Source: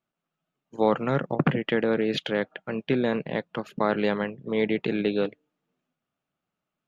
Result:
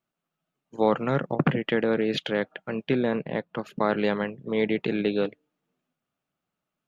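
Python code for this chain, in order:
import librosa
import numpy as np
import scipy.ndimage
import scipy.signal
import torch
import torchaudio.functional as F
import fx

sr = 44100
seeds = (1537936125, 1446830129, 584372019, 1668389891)

y = fx.high_shelf(x, sr, hz=4200.0, db=-10.5, at=(3.03, 3.59))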